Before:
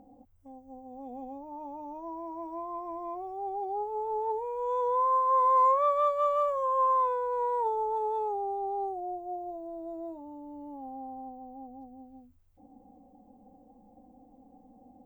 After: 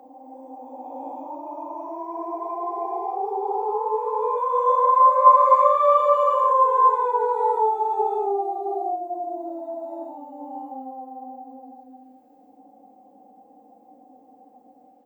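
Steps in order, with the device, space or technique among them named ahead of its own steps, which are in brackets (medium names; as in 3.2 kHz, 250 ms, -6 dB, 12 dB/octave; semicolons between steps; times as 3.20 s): ghost voice (reverse; reverberation RT60 3.1 s, pre-delay 20 ms, DRR -7.5 dB; reverse; high-pass 390 Hz 12 dB/octave)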